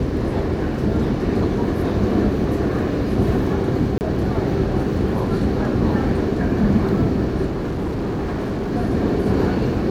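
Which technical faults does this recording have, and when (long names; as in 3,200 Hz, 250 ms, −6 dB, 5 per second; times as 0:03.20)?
0:03.98–0:04.01: drop-out 29 ms
0:07.46–0:08.73: clipping −20.5 dBFS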